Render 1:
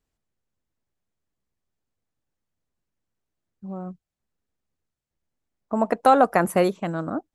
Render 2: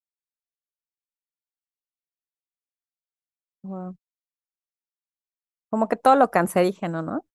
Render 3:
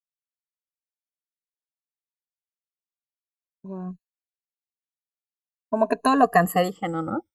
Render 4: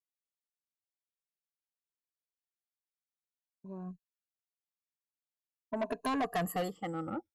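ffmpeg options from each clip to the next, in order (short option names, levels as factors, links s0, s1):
-af "agate=range=0.00794:threshold=0.01:ratio=16:detection=peak"
-af "afftfilt=real='re*pow(10,22/40*sin(2*PI*(1.5*log(max(b,1)*sr/1024/100)/log(2)-(0.47)*(pts-256)/sr)))':imag='im*pow(10,22/40*sin(2*PI*(1.5*log(max(b,1)*sr/1024/100)/log(2)-(0.47)*(pts-256)/sr)))':win_size=1024:overlap=0.75,agate=range=0.0224:threshold=0.00891:ratio=3:detection=peak,volume=0.631"
-af "asoftclip=type=tanh:threshold=0.119,volume=0.355"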